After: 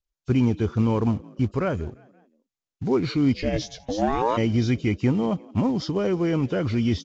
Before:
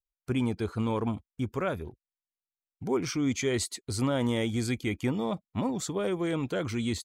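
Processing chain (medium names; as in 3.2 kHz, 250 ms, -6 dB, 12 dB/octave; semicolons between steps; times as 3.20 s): knee-point frequency compression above 2.5 kHz 1.5:1; bass shelf 360 Hz +8 dB; on a send: frequency-shifting echo 174 ms, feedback 49%, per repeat +50 Hz, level -24 dB; 3.33–4.36 s: on the sum: ring modulator 140 Hz -> 820 Hz; in parallel at -10.5 dB: short-mantissa float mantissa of 2-bit; on the sum: resampled via 16 kHz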